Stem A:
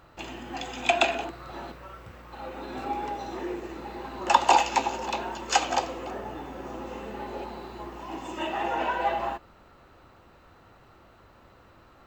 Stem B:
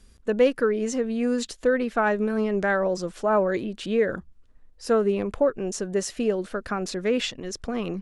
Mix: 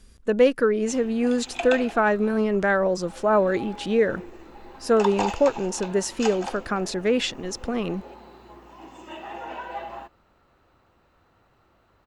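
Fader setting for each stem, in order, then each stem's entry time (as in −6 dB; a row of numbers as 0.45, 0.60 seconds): −7.5, +2.0 decibels; 0.70, 0.00 seconds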